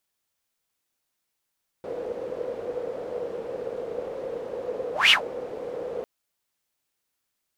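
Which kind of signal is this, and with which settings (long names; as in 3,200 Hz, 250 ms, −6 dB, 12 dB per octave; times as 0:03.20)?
pass-by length 4.20 s, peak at 0:03.26, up 0.17 s, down 0.13 s, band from 490 Hz, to 3,000 Hz, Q 9.7, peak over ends 18 dB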